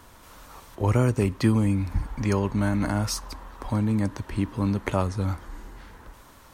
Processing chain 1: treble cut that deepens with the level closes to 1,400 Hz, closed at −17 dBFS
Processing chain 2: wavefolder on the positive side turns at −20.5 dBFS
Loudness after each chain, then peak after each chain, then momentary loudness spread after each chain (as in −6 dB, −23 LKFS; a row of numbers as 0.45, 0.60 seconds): −26.0, −28.5 LKFS; −8.5, −9.0 dBFS; 14, 19 LU